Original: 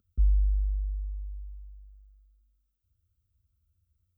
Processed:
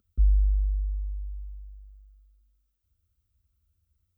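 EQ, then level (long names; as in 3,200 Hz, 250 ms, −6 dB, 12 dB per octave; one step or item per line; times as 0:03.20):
parametric band 120 Hz −9 dB 0.79 octaves
+3.0 dB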